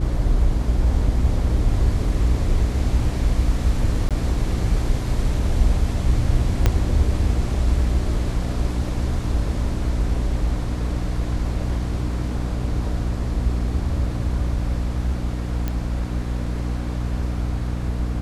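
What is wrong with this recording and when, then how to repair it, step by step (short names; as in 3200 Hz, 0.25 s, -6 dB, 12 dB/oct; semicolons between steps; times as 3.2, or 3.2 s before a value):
hum 60 Hz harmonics 5 -25 dBFS
4.09–4.11 gap 17 ms
6.66 pop -4 dBFS
15.68 pop -12 dBFS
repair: de-click; de-hum 60 Hz, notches 5; interpolate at 4.09, 17 ms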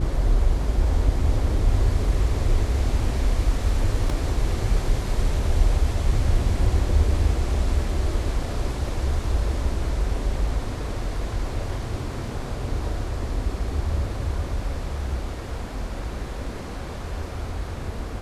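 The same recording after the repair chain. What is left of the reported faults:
6.66 pop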